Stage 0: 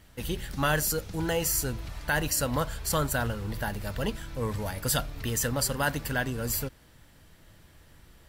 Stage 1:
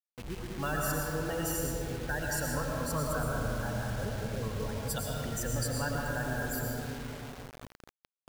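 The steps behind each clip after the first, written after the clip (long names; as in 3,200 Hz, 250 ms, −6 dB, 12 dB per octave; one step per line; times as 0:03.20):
gate on every frequency bin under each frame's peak −15 dB strong
comb and all-pass reverb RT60 3.8 s, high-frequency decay 0.4×, pre-delay 70 ms, DRR −3 dB
bit reduction 6 bits
level −8 dB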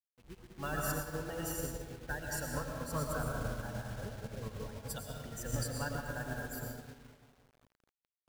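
expander for the loud parts 2.5 to 1, over −43 dBFS
level −1 dB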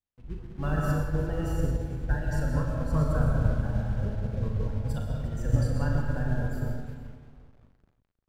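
RIAA equalisation playback
on a send: multi-tap delay 40/63/351 ms −6.5/−10/−15 dB
on the sum: level +2 dB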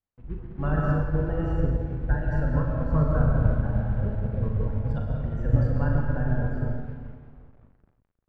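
low-pass filter 1,900 Hz 12 dB per octave
level +3 dB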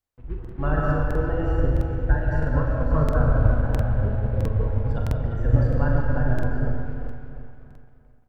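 parametric band 180 Hz −9.5 dB 0.59 octaves
on a send: repeating echo 347 ms, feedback 42%, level −10 dB
on the sum: regular buffer underruns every 0.66 s, samples 2,048, repeat, from 0:00.40
level +4 dB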